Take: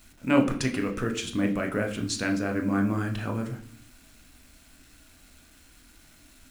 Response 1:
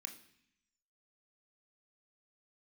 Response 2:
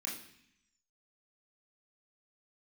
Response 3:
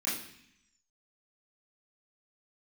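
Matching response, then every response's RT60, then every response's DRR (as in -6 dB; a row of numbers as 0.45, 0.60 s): 1; 0.65, 0.65, 0.65 s; 4.0, -5.0, -11.0 dB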